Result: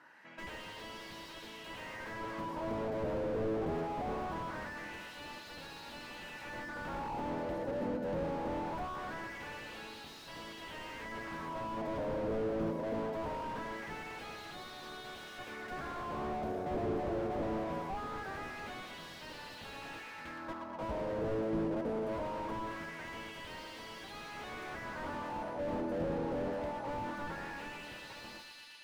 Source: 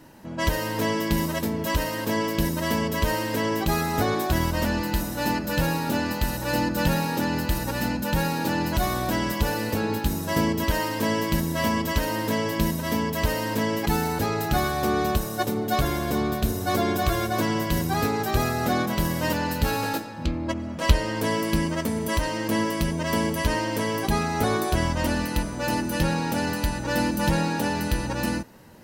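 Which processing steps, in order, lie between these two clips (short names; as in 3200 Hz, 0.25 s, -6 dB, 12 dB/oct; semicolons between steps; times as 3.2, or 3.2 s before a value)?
thinning echo 0.119 s, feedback 79%, high-pass 420 Hz, level -12 dB; wah 0.22 Hz 500–3900 Hz, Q 2.5; slew limiter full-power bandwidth 8.1 Hz; gain +2 dB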